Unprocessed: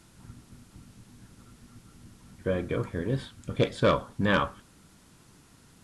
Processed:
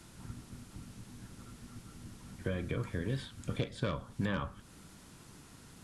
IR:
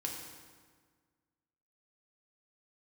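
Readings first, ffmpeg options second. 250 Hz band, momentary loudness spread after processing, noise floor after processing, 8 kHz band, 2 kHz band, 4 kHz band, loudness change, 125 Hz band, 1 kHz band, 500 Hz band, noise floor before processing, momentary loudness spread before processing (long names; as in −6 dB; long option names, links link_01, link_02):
−7.0 dB, 18 LU, −56 dBFS, −1.5 dB, −10.5 dB, −9.0 dB, −11.0 dB, −4.5 dB, −13.0 dB, −12.0 dB, −58 dBFS, 9 LU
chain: -filter_complex "[0:a]acrossover=split=200|1500[link_01][link_02][link_03];[link_01]acompressor=threshold=-37dB:ratio=4[link_04];[link_02]acompressor=threshold=-42dB:ratio=4[link_05];[link_03]acompressor=threshold=-48dB:ratio=4[link_06];[link_04][link_05][link_06]amix=inputs=3:normalize=0,volume=2dB"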